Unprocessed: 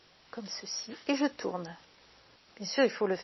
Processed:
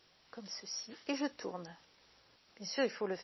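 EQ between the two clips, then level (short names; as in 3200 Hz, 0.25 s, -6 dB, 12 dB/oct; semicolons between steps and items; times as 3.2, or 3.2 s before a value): high shelf 5300 Hz +5.5 dB; -7.5 dB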